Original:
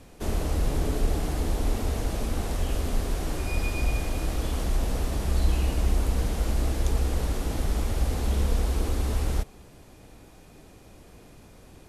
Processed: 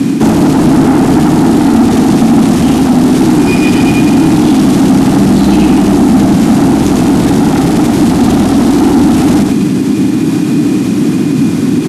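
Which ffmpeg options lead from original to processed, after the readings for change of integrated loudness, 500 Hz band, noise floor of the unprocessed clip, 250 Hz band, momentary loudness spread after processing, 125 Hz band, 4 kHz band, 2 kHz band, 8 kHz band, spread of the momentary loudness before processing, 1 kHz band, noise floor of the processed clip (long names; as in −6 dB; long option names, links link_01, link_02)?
+21.0 dB, +21.0 dB, −51 dBFS, +31.5 dB, 3 LU, +15.5 dB, +18.0 dB, +18.5 dB, +17.0 dB, 4 LU, +22.5 dB, −11 dBFS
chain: -filter_complex "[0:a]highpass=frequency=150:width=0.5412,highpass=frequency=150:width=1.3066,lowshelf=frequency=390:width_type=q:width=3:gain=10.5,asoftclip=type=tanh:threshold=-26dB,areverse,acompressor=threshold=-37dB:ratio=6,areverse,lowpass=11000,asplit=2[link_01][link_02];[link_02]aecho=0:1:92:0.562[link_03];[link_01][link_03]amix=inputs=2:normalize=0,alimiter=level_in=34dB:limit=-1dB:release=50:level=0:latency=1,volume=-1dB"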